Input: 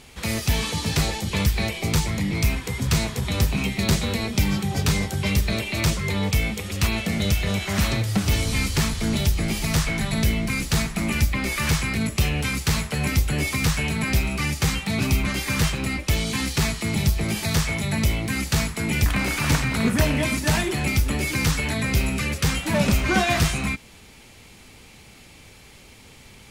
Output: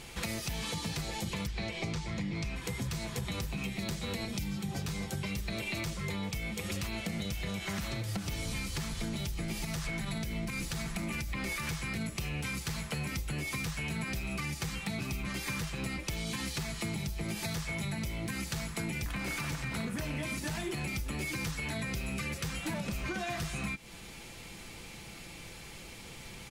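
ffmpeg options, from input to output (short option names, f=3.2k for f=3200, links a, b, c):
-filter_complex "[0:a]asettb=1/sr,asplit=3[a][b][c];[a]atrim=end=1.474[d];[b]atrim=start=1.47:end=2.56,asetpts=PTS-STARTPTS,afade=t=in:d=0.004:c=qsin,afade=t=out:st=1.086:d=0.004:c=qsin,lowpass=6k[e];[c]atrim=start=2.556[f];[d][e]acrossfade=d=0.004:c1=hsin:c2=qsin[g];[g][f]acrossfade=d=0.004:c1=qsin:c2=hsin,asettb=1/sr,asplit=3[h][i][j];[h]atrim=end=4.254[k];[i]atrim=start=4.25:end=4.69,asetpts=PTS-STARTPTS,afade=t=in:d=0.004:c=qsin,afade=t=out:st=0.436:d=0.004:c=qsin,acrossover=split=270|3000[l][m][n];[m]acompressor=threshold=-33dB:ratio=6:attack=3.2:release=140:knee=2.83:detection=peak[o];[l][o][n]amix=inputs=3:normalize=0[p];[j]atrim=start=4.686[q];[k][p]acrossfade=d=0.004:c1=hsin:c2=qsin[r];[r][q]acrossfade=d=0.004:c1=qsin:c2=hsin,asettb=1/sr,asplit=3[s][t][u];[s]atrim=end=9.644[v];[t]atrim=start=9.64:end=11.69,asetpts=PTS-STARTPTS,afade=t=in:d=0.004:c=qsin,afade=t=out:st=2.046:d=0.004:c=qsin,acompressor=threshold=-22dB:ratio=6:attack=3.2:release=140:knee=1:detection=peak[w];[u]atrim=start=11.686[x];[v][w]acrossfade=d=0.004:c1=hsin:c2=qsin[y];[y][x]acrossfade=d=0.004:c1=qsin:c2=hsin,aecho=1:1:5.9:0.36,alimiter=limit=-18dB:level=0:latency=1:release=395,acompressor=threshold=-33dB:ratio=6"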